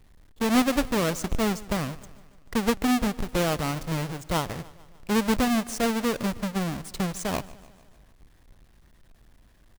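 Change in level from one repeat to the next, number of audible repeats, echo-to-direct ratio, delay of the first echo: -5.0 dB, 4, -18.5 dB, 148 ms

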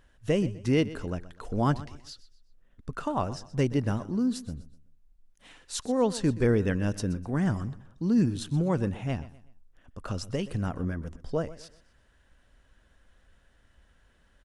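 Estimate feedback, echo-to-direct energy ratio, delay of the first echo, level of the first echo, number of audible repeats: 35%, -16.5 dB, 125 ms, -17.0 dB, 2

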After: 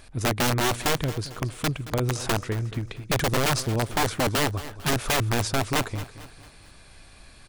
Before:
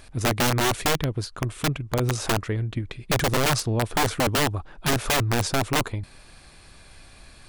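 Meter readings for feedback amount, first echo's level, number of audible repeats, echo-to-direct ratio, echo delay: 43%, -15.0 dB, 3, -14.0 dB, 224 ms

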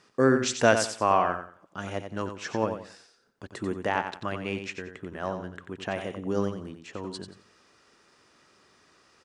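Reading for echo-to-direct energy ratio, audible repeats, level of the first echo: -7.5 dB, 3, -8.0 dB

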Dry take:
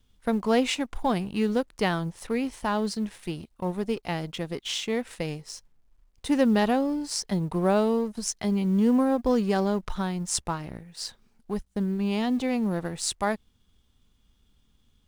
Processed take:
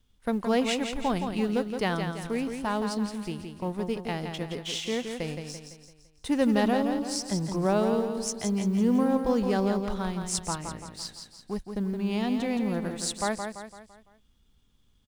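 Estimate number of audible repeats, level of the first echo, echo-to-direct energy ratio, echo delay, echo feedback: 5, -6.5 dB, -5.5 dB, 169 ms, 46%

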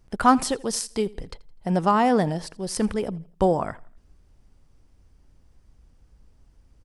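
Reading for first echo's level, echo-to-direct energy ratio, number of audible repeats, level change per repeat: -22.5 dB, -22.0 dB, 2, -8.0 dB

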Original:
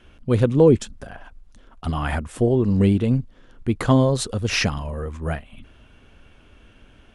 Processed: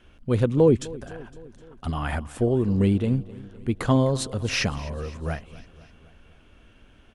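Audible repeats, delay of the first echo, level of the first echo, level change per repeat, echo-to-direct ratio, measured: 4, 255 ms, -19.5 dB, -4.5 dB, -17.5 dB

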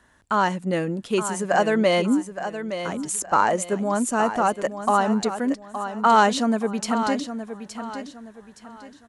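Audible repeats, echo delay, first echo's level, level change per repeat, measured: 3, 868 ms, -10.0 dB, -10.0 dB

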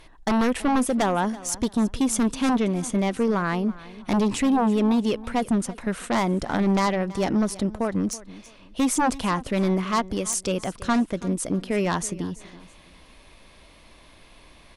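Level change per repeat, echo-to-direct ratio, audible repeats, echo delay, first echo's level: -11.0 dB, -18.0 dB, 2, 329 ms, -18.5 dB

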